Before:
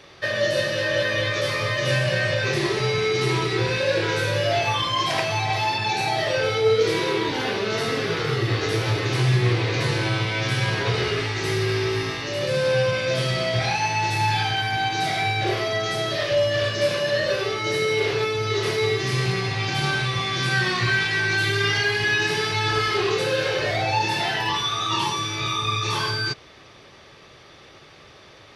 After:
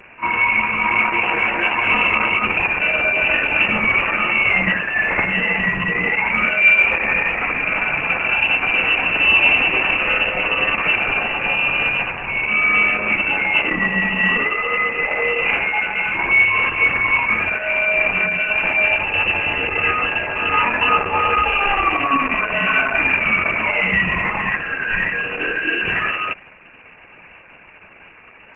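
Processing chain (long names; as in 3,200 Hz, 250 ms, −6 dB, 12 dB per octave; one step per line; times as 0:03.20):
echo ahead of the sound 43 ms −18.5 dB
voice inversion scrambler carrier 2,800 Hz
level +5.5 dB
Opus 10 kbit/s 48,000 Hz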